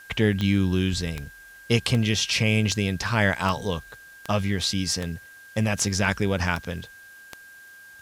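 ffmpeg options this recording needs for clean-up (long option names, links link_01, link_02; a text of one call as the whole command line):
ffmpeg -i in.wav -af "adeclick=threshold=4,bandreject=frequency=1600:width=30,agate=range=-21dB:threshold=-39dB" out.wav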